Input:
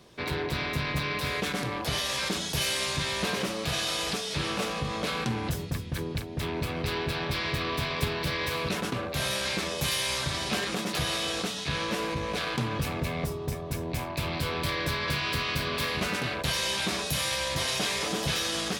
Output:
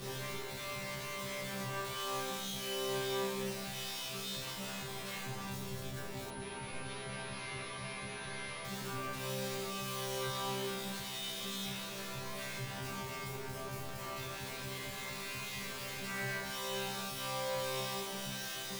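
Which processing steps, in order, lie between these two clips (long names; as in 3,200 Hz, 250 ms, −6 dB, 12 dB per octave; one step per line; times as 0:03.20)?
sign of each sample alone
low-shelf EQ 200 Hz +7 dB
leveller curve on the samples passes 1
resonators tuned to a chord C3 fifth, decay 0.78 s
0:06.30–0:08.65: switching amplifier with a slow clock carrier 10,000 Hz
level +4 dB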